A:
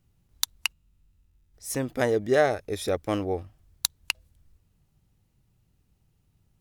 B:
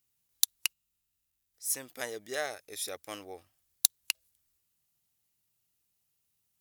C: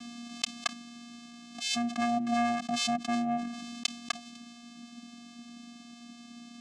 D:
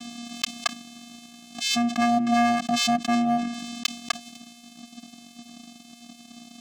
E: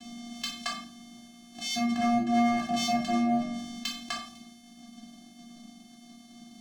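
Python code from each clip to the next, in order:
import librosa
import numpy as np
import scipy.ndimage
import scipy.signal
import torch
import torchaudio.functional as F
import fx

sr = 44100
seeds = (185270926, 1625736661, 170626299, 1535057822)

y1 = fx.tilt_eq(x, sr, slope=4.5)
y1 = F.gain(torch.from_numpy(y1), -11.5).numpy()
y2 = fx.rider(y1, sr, range_db=10, speed_s=0.5)
y2 = fx.vocoder(y2, sr, bands=4, carrier='square', carrier_hz=237.0)
y2 = fx.env_flatten(y2, sr, amount_pct=70)
y3 = fx.leveller(y2, sr, passes=2)
y4 = fx.low_shelf(y3, sr, hz=67.0, db=10.5)
y4 = fx.comb_fb(y4, sr, f0_hz=69.0, decay_s=0.44, harmonics='odd', damping=0.0, mix_pct=80)
y4 = fx.room_shoebox(y4, sr, seeds[0], volume_m3=450.0, walls='furnished', distance_m=3.1)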